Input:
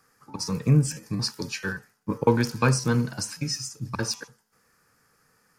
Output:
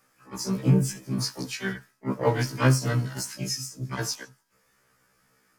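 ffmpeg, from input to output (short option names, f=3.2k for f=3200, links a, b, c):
-filter_complex "[0:a]asplit=3[a][b][c];[b]asetrate=55563,aresample=44100,atempo=0.793701,volume=-6dB[d];[c]asetrate=88200,aresample=44100,atempo=0.5,volume=-12dB[e];[a][d][e]amix=inputs=3:normalize=0,afftfilt=real='re*1.73*eq(mod(b,3),0)':imag='im*1.73*eq(mod(b,3),0)':win_size=2048:overlap=0.75"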